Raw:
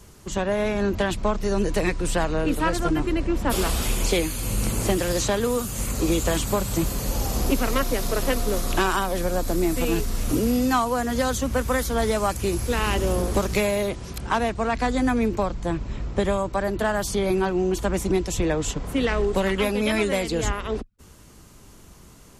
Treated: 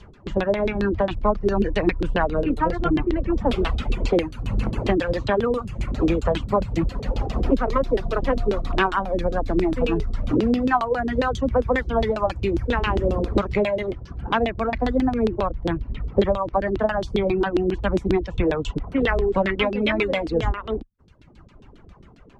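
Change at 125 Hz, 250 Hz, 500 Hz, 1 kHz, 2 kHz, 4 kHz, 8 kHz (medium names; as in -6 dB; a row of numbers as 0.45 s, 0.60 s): +1.0 dB, +1.5 dB, +2.0 dB, +1.5 dB, +0.5 dB, -3.5 dB, under -20 dB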